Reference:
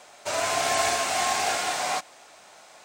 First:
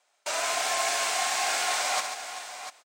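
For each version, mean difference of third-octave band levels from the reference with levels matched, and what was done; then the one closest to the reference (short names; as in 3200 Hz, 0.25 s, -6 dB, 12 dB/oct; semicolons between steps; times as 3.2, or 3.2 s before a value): 7.0 dB: HPF 900 Hz 6 dB/oct; gate -44 dBFS, range -26 dB; reverse; compressor, threshold -33 dBFS, peak gain reduction 10.5 dB; reverse; tapped delay 66/139/389/693 ms -8.5/-9.5/-14.5/-11 dB; gain +7 dB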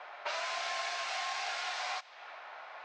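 10.5 dB: HPF 920 Hz 12 dB/oct; low-pass opened by the level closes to 1600 Hz, open at -24.5 dBFS; LPF 5300 Hz 24 dB/oct; compressor 5:1, threshold -45 dBFS, peak gain reduction 18.5 dB; gain +8.5 dB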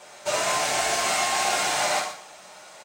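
3.0 dB: limiter -18.5 dBFS, peak gain reduction 7 dB; outdoor echo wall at 21 m, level -12 dB; non-linear reverb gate 0.18 s falling, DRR -2.5 dB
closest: third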